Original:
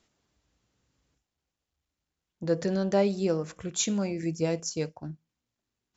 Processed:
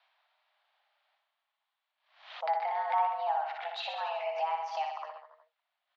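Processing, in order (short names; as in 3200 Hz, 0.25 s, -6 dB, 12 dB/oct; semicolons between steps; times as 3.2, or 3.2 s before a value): treble ducked by the level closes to 1500 Hz, closed at -22 dBFS; compressor 2.5:1, threshold -31 dBFS, peak gain reduction 8.5 dB; mistuned SSB +320 Hz 390–3600 Hz; reverse bouncing-ball echo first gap 60 ms, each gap 1.1×, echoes 5; backwards sustainer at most 110 dB/s; gain +3.5 dB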